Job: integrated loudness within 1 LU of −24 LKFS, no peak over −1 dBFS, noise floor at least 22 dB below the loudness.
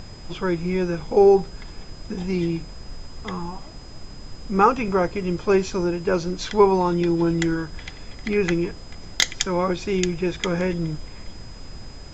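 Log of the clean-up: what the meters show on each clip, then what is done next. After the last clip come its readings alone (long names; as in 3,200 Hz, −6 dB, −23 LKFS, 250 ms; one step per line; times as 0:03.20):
interfering tone 5,000 Hz; level of the tone −47 dBFS; background noise floor −40 dBFS; target noise floor −45 dBFS; integrated loudness −22.5 LKFS; sample peak −3.5 dBFS; target loudness −24.0 LKFS
→ notch filter 5,000 Hz, Q 30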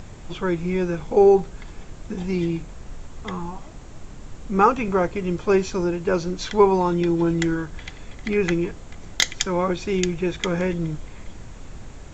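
interfering tone none found; background noise floor −41 dBFS; target noise floor −45 dBFS
→ noise reduction from a noise print 6 dB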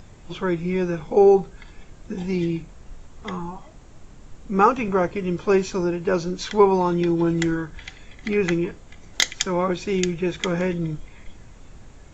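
background noise floor −46 dBFS; integrated loudness −22.5 LKFS; sample peak −3.5 dBFS; target loudness −24.0 LKFS
→ level −1.5 dB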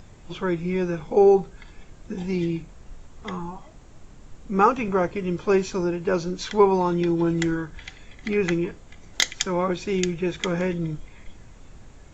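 integrated loudness −24.0 LKFS; sample peak −5.0 dBFS; background noise floor −47 dBFS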